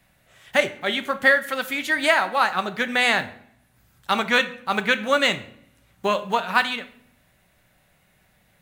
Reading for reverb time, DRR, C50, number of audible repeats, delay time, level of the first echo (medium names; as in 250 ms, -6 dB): 0.65 s, 9.5 dB, 15.5 dB, no echo, no echo, no echo